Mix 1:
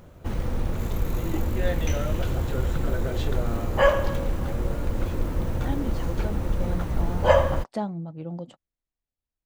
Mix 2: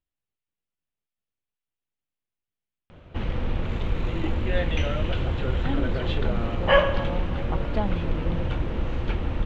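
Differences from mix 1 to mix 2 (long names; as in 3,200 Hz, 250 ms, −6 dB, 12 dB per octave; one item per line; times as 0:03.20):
background: entry +2.90 s
master: add low-pass with resonance 3,000 Hz, resonance Q 2.3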